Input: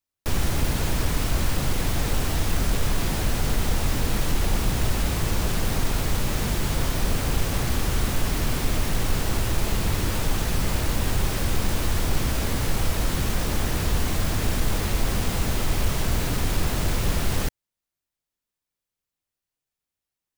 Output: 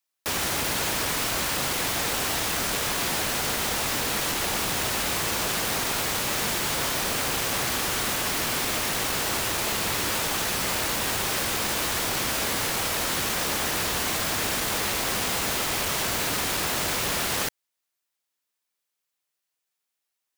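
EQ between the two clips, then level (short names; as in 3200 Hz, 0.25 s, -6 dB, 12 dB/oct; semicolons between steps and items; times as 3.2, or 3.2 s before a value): HPF 770 Hz 6 dB/oct; +5.5 dB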